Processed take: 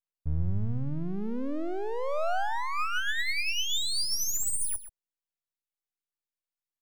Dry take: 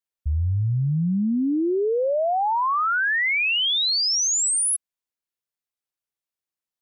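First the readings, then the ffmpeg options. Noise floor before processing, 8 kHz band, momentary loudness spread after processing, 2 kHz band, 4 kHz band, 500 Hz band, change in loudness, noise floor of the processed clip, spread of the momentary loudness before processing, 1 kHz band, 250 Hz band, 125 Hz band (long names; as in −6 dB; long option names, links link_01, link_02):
below −85 dBFS, −9.5 dB, 6 LU, −9.0 dB, −9.0 dB, −10.0 dB, −9.0 dB, below −85 dBFS, 5 LU, −9.5 dB, −11.0 dB, −9.5 dB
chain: -filter_complex "[0:a]adynamicequalizer=threshold=0.0112:dfrequency=860:dqfactor=6.4:tfrequency=860:tqfactor=6.4:attack=5:release=100:ratio=0.375:range=2.5:mode=cutabove:tftype=bell,aphaser=in_gain=1:out_gain=1:delay=2.7:decay=0.28:speed=0.42:type=sinusoidal,aeval=exprs='max(val(0),0)':channel_layout=same,asplit=2[link_01][link_02];[link_02]adelay=128.3,volume=-12dB,highshelf=frequency=4000:gain=-2.89[link_03];[link_01][link_03]amix=inputs=2:normalize=0,volume=-4.5dB"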